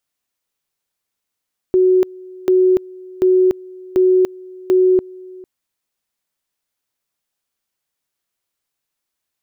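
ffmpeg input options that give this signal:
-f lavfi -i "aevalsrc='pow(10,(-9-23.5*gte(mod(t,0.74),0.29))/20)*sin(2*PI*370*t)':d=3.7:s=44100"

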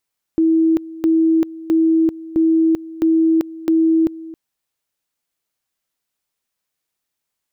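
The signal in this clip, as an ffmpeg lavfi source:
-f lavfi -i "aevalsrc='pow(10,(-11-18.5*gte(mod(t,0.66),0.39))/20)*sin(2*PI*324*t)':d=3.96:s=44100"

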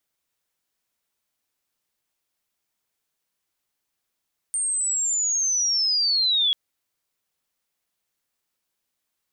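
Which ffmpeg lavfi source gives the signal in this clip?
-f lavfi -i "aevalsrc='pow(10,(-22+4.5*t/1.99)/20)*sin(2*PI*(8800*t-5500*t*t/(2*1.99)))':d=1.99:s=44100"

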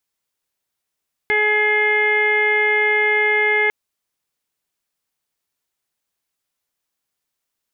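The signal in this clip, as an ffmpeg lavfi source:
-f lavfi -i "aevalsrc='0.0891*sin(2*PI*423*t)+0.0531*sin(2*PI*846*t)+0.0126*sin(2*PI*1269*t)+0.0891*sin(2*PI*1692*t)+0.15*sin(2*PI*2115*t)+0.0158*sin(2*PI*2538*t)+0.0112*sin(2*PI*2961*t)+0.00891*sin(2*PI*3384*t)':d=2.4:s=44100"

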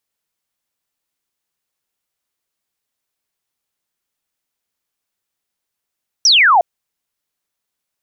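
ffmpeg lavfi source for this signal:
-f lavfi -i "aevalsrc='0.447*clip(t/0.002,0,1)*clip((0.36-t)/0.002,0,1)*sin(2*PI*6000*0.36/log(650/6000)*(exp(log(650/6000)*t/0.36)-1))':d=0.36:s=44100"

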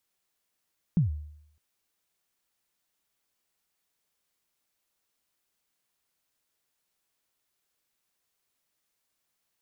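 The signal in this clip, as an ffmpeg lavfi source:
-f lavfi -i "aevalsrc='0.141*pow(10,-3*t/0.73)*sin(2*PI*(190*0.132/log(75/190)*(exp(log(75/190)*min(t,0.132)/0.132)-1)+75*max(t-0.132,0)))':d=0.61:s=44100"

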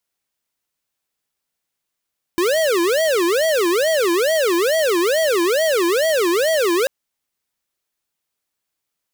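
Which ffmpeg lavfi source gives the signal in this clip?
-f lavfi -i "aevalsrc='0.141*(2*lt(mod((493.5*t-156.5/(2*PI*2.3)*sin(2*PI*2.3*t)),1),0.5)-1)':d=4.49:s=44100"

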